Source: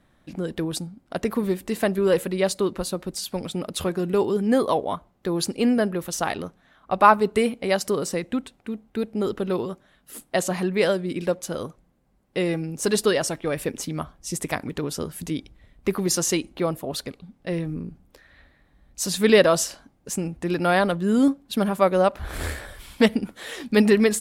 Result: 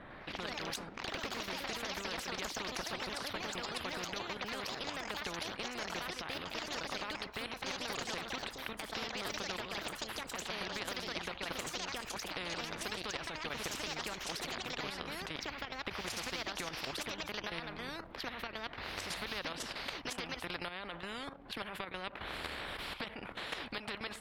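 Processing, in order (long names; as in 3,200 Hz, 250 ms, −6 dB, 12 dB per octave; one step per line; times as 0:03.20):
low-shelf EQ 370 Hz −11.5 dB
downward compressor 12 to 1, threshold −31 dBFS, peak gain reduction 21.5 dB
brickwall limiter −26 dBFS, peak gain reduction 10.5 dB
output level in coarse steps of 12 dB
high-frequency loss of the air 460 metres
delay with pitch and tempo change per echo 103 ms, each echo +3 semitones, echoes 3
every bin compressed towards the loudest bin 4 to 1
level +3.5 dB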